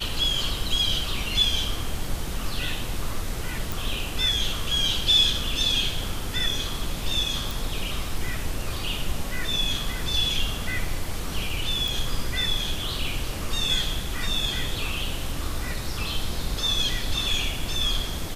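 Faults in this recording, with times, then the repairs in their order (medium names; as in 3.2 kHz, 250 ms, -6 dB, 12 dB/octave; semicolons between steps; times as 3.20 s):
3.72 s: pop
7.51 s: pop
11.88 s: pop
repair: de-click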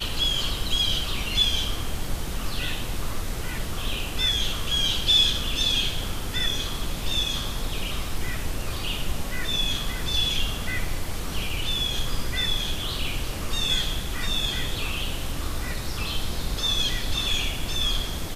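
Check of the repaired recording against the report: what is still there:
nothing left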